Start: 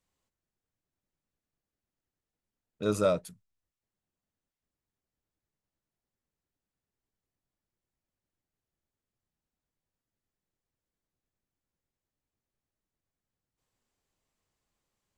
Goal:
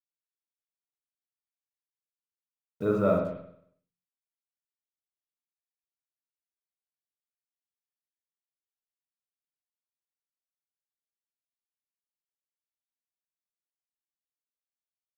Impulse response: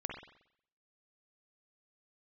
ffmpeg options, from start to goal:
-filter_complex "[0:a]lowpass=1.6k,bandreject=f=550:w=12,asplit=2[a][b];[b]alimiter=level_in=1dB:limit=-24dB:level=0:latency=1:release=163,volume=-1dB,volume=0dB[c];[a][c]amix=inputs=2:normalize=0,acrusher=bits=8:mix=0:aa=0.5[d];[1:a]atrim=start_sample=2205[e];[d][e]afir=irnorm=-1:irlink=0"

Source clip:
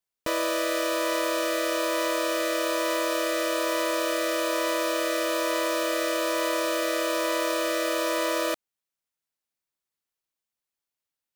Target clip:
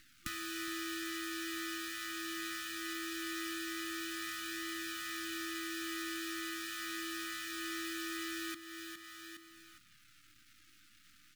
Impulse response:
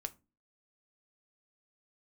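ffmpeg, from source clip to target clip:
-filter_complex "[0:a]acrossover=split=160|3700[a][b][c];[b]acompressor=mode=upward:threshold=-46dB:ratio=2.5[d];[a][d][c]amix=inputs=3:normalize=0,acrusher=bits=8:dc=4:mix=0:aa=0.000001,equalizer=f=100:t=o:w=1.9:g=4,aecho=1:1:412|824|1236:0.168|0.0554|0.0183,acompressor=threshold=-48dB:ratio=3,asplit=2[e][f];[1:a]atrim=start_sample=2205[g];[f][g]afir=irnorm=-1:irlink=0,volume=-1dB[h];[e][h]amix=inputs=2:normalize=0,afftfilt=real='re*(1-between(b*sr/4096,340,1200))':imag='im*(1-between(b*sr/4096,340,1200))':win_size=4096:overlap=0.75,flanger=delay=0.9:depth=4.2:regen=-51:speed=0.21:shape=triangular,volume=6.5dB"

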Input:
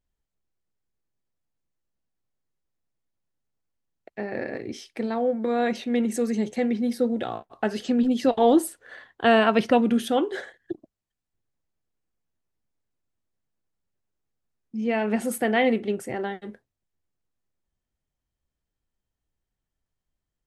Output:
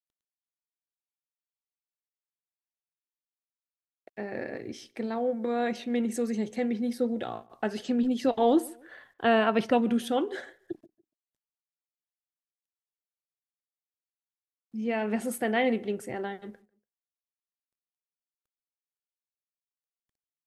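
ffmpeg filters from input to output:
-filter_complex "[0:a]asettb=1/sr,asplit=3[a][b][c];[a]atrim=end=8.604[d];[b]atrim=start=8.6:end=9.6,asetpts=PTS-STARTPTS,afade=t=in:d=0.004:c=qsin,afade=t=out:st=0.996:d=0.004:c=qsin,equalizer=f=7.2k:w=0.78:g=-6.5[e];[c]atrim=start=9.596[f];[d][e]acrossfade=d=0.004:c1=hsin:c2=qsin[g];[g][f]acrossfade=d=0.004:c1=qsin:c2=hsin,acrusher=bits=11:mix=0:aa=0.000001,asplit=2[h][i];[i]adelay=144,lowpass=f=1.8k:p=1,volume=-22.5dB,asplit=2[j][k];[k]adelay=144,lowpass=f=1.8k:p=1,volume=0.32[l];[j][l]amix=inputs=2:normalize=0[m];[h][m]amix=inputs=2:normalize=0,aresample=32000,aresample=44100,volume=-4.5dB"

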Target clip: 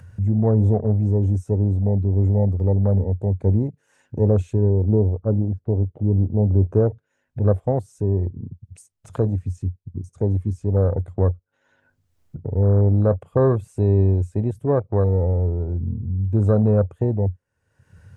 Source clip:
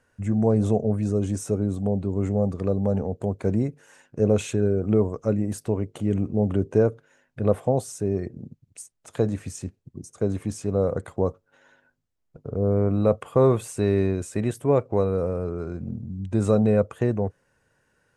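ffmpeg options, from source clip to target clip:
-filter_complex "[0:a]equalizer=f=89:t=o:w=0.55:g=13.5,acompressor=mode=upward:threshold=-22dB:ratio=2.5,afwtdn=0.0355,asettb=1/sr,asplit=3[a][b][c];[a]atrim=end=4.704[d];[b]atrim=start=4.7:end=6.71,asetpts=PTS-STARTPTS,afade=t=in:d=0.004:c=qsin,afade=t=out:st=2.006:d=0.004:c=qsin,lowpass=1.1k[e];[c]atrim=start=6.706[f];[d][e]acrossfade=d=0.004:c1=hsin:c2=qsin[g];[g][f]acrossfade=d=0.004:c1=qsin:c2=hsin"

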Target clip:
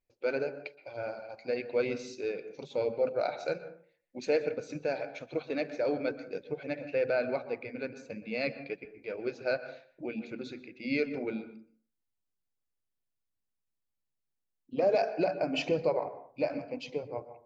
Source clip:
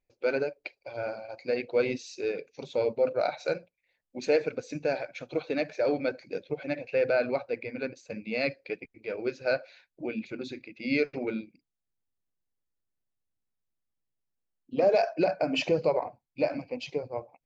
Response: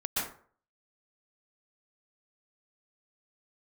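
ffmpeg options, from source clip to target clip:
-filter_complex "[0:a]asplit=2[a][b];[1:a]atrim=start_sample=2205,highshelf=f=3.1k:g=-11[c];[b][c]afir=irnorm=-1:irlink=0,volume=-15.5dB[d];[a][d]amix=inputs=2:normalize=0,volume=-4.5dB"

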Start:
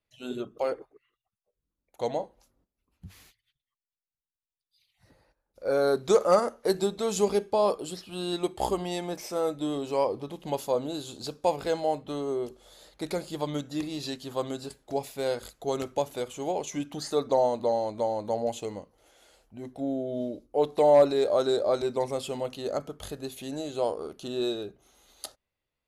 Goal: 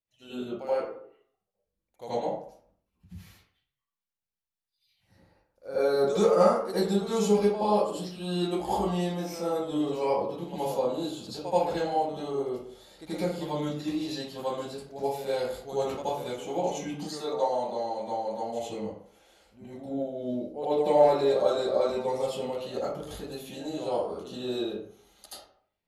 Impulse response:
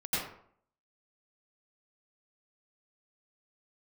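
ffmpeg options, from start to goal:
-filter_complex "[0:a]asettb=1/sr,asplit=3[a][b][c];[a]atrim=end=16.974[d];[b]atrim=start=16.97:end=18.52,asetpts=PTS-STARTPTS,afade=t=in:d=0.004:c=qsin,afade=t=out:st=1.546:d=0.004:c=qsin,lowshelf=f=470:g=-9[e];[c]atrim=start=18.516[f];[d][e]acrossfade=d=0.004:c1=hsin:c2=qsin[g];[g][f]acrossfade=d=0.004:c1=qsin:c2=hsin[h];[1:a]atrim=start_sample=2205,asetrate=48510,aresample=44100[i];[h][i]afir=irnorm=-1:irlink=0,volume=-6dB"

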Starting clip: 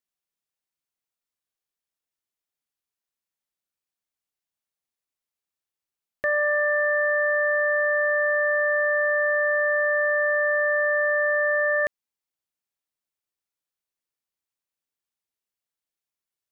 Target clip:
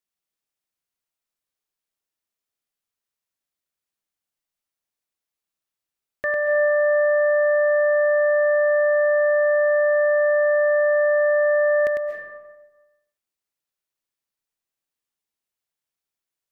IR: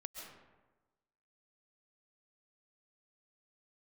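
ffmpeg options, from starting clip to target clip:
-filter_complex "[0:a]asplit=2[a][b];[1:a]atrim=start_sample=2205,adelay=101[c];[b][c]afir=irnorm=-1:irlink=0,volume=1dB[d];[a][d]amix=inputs=2:normalize=0"

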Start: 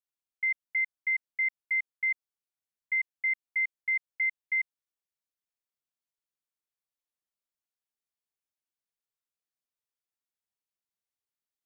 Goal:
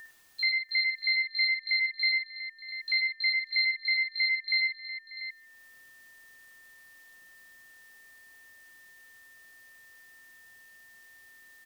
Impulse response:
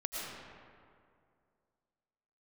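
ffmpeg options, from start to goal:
-filter_complex "[0:a]acompressor=mode=upward:threshold=-42dB:ratio=2.5,asplit=2[a][b];[b]asetrate=88200,aresample=44100,atempo=0.5,volume=-6dB[c];[a][c]amix=inputs=2:normalize=0,aeval=exprs='val(0)+0.00501*sin(2*PI*1800*n/s)':c=same,aecho=1:1:57|67|79|108|591|691:0.531|0.266|0.126|0.335|0.126|0.251,asplit=2[d][e];[1:a]atrim=start_sample=2205,afade=t=out:st=0.21:d=0.01,atrim=end_sample=9702[f];[e][f]afir=irnorm=-1:irlink=0,volume=-25dB[g];[d][g]amix=inputs=2:normalize=0"

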